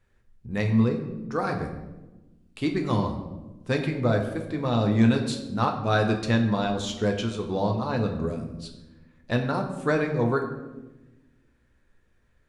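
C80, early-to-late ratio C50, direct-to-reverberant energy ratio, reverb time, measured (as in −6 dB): 9.5 dB, 8.0 dB, 3.0 dB, 1.1 s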